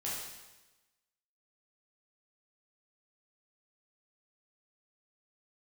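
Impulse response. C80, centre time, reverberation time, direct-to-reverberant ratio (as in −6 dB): 3.0 dB, 75 ms, 1.1 s, −7.0 dB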